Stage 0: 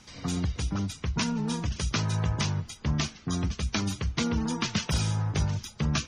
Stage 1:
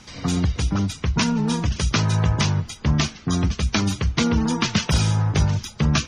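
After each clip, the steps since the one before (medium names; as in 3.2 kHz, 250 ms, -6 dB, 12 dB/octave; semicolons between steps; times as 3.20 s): treble shelf 7.5 kHz -4.5 dB; trim +8 dB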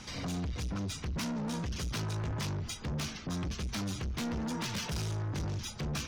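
hard clipper -17 dBFS, distortion -13 dB; peak limiter -23 dBFS, peak gain reduction 6 dB; saturation -31.5 dBFS, distortion -11 dB; trim -1 dB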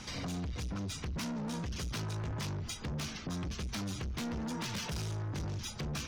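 compression, threshold -37 dBFS, peak gain reduction 3.5 dB; trim +1 dB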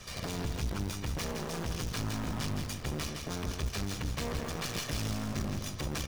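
comb filter that takes the minimum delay 1.7 ms; in parallel at -6 dB: bit crusher 6-bit; on the sum: feedback delay 165 ms, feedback 36%, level -6 dB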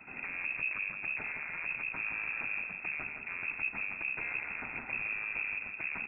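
frequency inversion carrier 2.6 kHz; trim -3 dB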